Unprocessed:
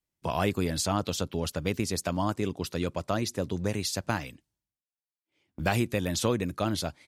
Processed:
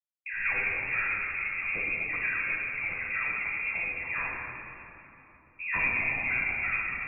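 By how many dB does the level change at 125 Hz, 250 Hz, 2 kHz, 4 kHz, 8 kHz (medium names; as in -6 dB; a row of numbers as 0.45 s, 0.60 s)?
-17.0 dB, -18.5 dB, +12.0 dB, under -20 dB, under -40 dB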